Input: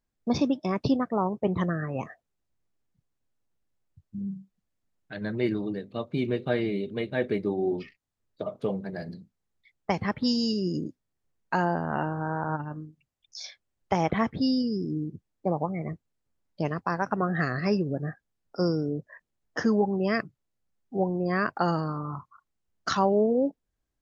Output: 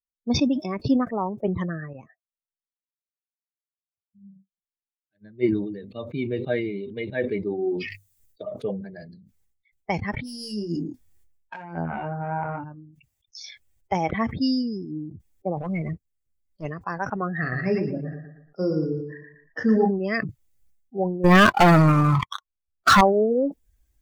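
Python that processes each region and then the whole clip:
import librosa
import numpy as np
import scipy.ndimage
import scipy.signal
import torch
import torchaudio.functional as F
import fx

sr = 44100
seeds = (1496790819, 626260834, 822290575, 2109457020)

y = fx.chain(x, sr, fx.peak_eq(hz=210.0, db=4.5, octaves=2.9),
    fx.upward_expand(threshold_db=-40.0, expansion=2.5), at=(1.93, 5.53))
y = fx.chain(y, sr, fx.high_shelf(hz=4900.0, db=8.5),
    fx.hum_notches(base_hz=50, count=3), at=(7.61, 8.54))
y = fx.chain(y, sr, fx.self_delay(depth_ms=0.12),
    fx.over_compress(threshold_db=-29.0, ratio=-0.5),
    fx.doubler(ms=24.0, db=-4.5), at=(10.14, 12.64))
y = fx.chain(y, sr, fx.peak_eq(hz=900.0, db=-7.0, octaves=0.23),
    fx.leveller(passes=2),
    fx.transient(attack_db=-11, sustain_db=-6), at=(15.57, 16.66))
y = fx.chain(y, sr, fx.air_absorb(metres=130.0),
    fx.doubler(ms=32.0, db=-6.0),
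    fx.echo_feedback(ms=116, feedback_pct=35, wet_db=-6.0), at=(17.4, 19.91))
y = fx.chain(y, sr, fx.lowpass(hz=2300.0, slope=6),
    fx.leveller(passes=5),
    fx.upward_expand(threshold_db=-25.0, expansion=1.5), at=(21.24, 23.01))
y = fx.bin_expand(y, sr, power=1.5)
y = fx.peak_eq(y, sr, hz=1900.0, db=3.0, octaves=0.96)
y = fx.sustainer(y, sr, db_per_s=63.0)
y = F.gain(torch.from_numpy(y), 4.0).numpy()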